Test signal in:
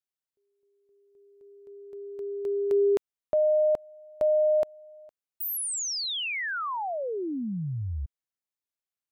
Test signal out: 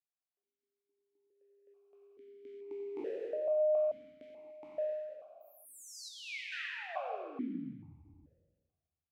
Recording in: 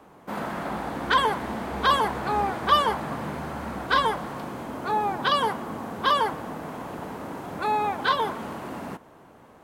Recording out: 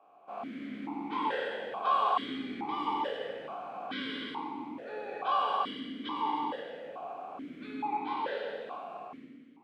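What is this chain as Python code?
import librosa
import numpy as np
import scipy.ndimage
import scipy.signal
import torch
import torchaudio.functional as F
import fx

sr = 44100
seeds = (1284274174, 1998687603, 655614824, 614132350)

p1 = fx.spec_trails(x, sr, decay_s=1.49)
p2 = p1 + fx.echo_feedback(p1, sr, ms=90, feedback_pct=50, wet_db=-12, dry=0)
p3 = fx.rev_gated(p2, sr, seeds[0], gate_ms=310, shape='flat', drr_db=1.0)
p4 = fx.vowel_held(p3, sr, hz=2.3)
y = p4 * 10.0 ** (-3.0 / 20.0)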